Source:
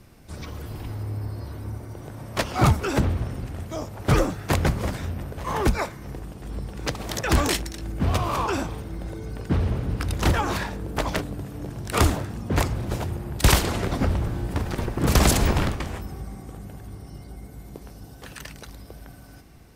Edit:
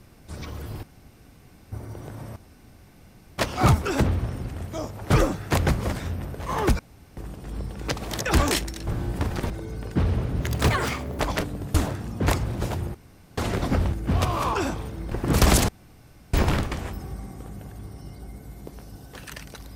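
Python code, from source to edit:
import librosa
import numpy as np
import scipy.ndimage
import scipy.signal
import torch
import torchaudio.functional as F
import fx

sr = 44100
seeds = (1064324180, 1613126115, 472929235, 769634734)

y = fx.edit(x, sr, fx.room_tone_fill(start_s=0.83, length_s=0.89),
    fx.insert_room_tone(at_s=2.36, length_s=1.02),
    fx.room_tone_fill(start_s=5.77, length_s=0.38),
    fx.swap(start_s=7.85, length_s=1.19, other_s=14.22, other_length_s=0.63),
    fx.speed_span(start_s=9.94, length_s=1.02, speed=1.3),
    fx.cut(start_s=11.52, length_s=0.52),
    fx.room_tone_fill(start_s=13.24, length_s=0.43),
    fx.insert_room_tone(at_s=15.42, length_s=0.65), tone=tone)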